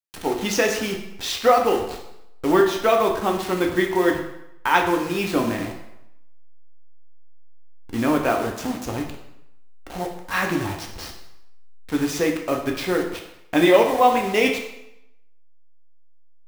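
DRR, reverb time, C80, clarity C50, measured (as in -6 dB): 1.0 dB, 0.85 s, 9.5 dB, 6.5 dB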